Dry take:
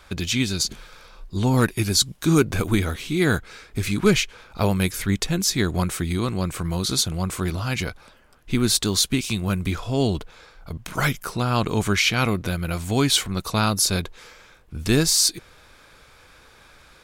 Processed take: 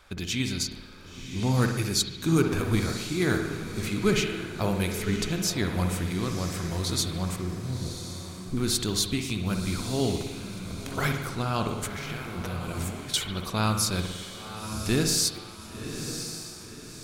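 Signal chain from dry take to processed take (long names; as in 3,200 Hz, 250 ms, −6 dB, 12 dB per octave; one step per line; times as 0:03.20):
0:07.36–0:08.57: Gaussian smoothing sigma 17 samples
0:11.68–0:13.14: compressor whose output falls as the input rises −31 dBFS, ratio −1
feedback delay with all-pass diffusion 1,049 ms, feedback 41%, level −9 dB
spring reverb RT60 1.1 s, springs 55 ms, chirp 20 ms, DRR 5 dB
level −6.5 dB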